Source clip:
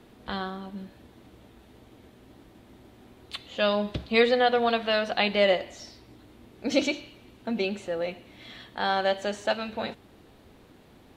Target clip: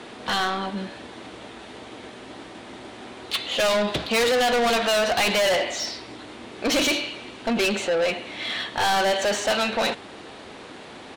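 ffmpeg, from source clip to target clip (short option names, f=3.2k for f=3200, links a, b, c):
-filter_complex "[0:a]aresample=22050,aresample=44100,asplit=2[a][b];[b]highpass=f=720:p=1,volume=25dB,asoftclip=type=tanh:threshold=-7.5dB[c];[a][c]amix=inputs=2:normalize=0,lowpass=f=6.5k:p=1,volume=-6dB,asoftclip=type=tanh:threshold=-18.5dB"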